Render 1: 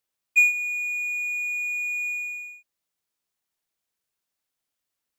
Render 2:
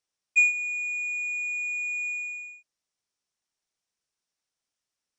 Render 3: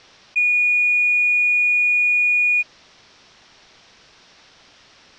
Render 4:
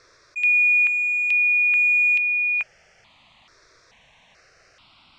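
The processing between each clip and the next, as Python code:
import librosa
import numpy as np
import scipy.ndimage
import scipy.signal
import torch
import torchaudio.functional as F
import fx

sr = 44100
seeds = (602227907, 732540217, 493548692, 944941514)

y1 = scipy.signal.sosfilt(scipy.signal.butter(16, 10000.0, 'lowpass', fs=sr, output='sos'), x)
y1 = fx.peak_eq(y1, sr, hz=5600.0, db=7.5, octaves=0.29)
y1 = y1 * 10.0 ** (-2.5 / 20.0)
y2 = scipy.signal.sosfilt(scipy.signal.butter(4, 4600.0, 'lowpass', fs=sr, output='sos'), y1)
y2 = fx.env_flatten(y2, sr, amount_pct=100)
y3 = fx.phaser_held(y2, sr, hz=2.3, low_hz=810.0, high_hz=2000.0)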